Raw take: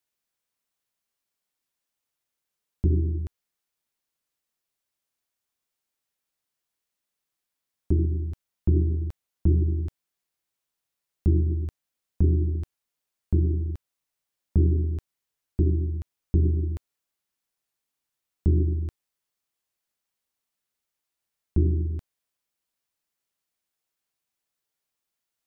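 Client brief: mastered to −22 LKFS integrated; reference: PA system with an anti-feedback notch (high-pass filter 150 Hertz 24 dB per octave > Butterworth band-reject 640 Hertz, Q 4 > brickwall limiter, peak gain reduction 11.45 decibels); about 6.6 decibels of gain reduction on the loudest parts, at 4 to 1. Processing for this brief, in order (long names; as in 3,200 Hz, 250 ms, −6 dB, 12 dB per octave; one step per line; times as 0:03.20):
downward compressor 4 to 1, threshold −24 dBFS
high-pass filter 150 Hz 24 dB per octave
Butterworth band-reject 640 Hz, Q 4
level +22.5 dB
brickwall limiter −10.5 dBFS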